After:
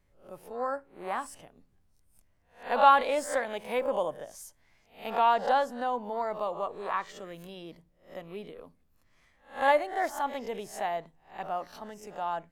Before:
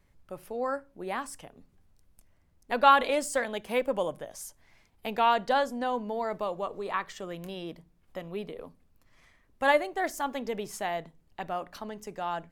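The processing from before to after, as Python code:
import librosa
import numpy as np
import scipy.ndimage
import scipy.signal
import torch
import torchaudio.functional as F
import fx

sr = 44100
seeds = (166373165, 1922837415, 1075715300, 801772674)

y = fx.spec_swells(x, sr, rise_s=0.37)
y = fx.dynamic_eq(y, sr, hz=810.0, q=0.93, threshold_db=-39.0, ratio=4.0, max_db=7)
y = F.gain(torch.from_numpy(y), -6.0).numpy()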